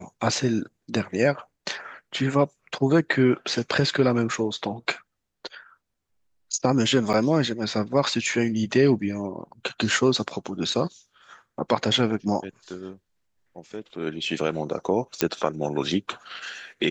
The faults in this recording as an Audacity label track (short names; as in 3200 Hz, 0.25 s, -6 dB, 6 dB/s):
7.130000	7.140000	gap 8.9 ms
15.210000	15.210000	pop -4 dBFS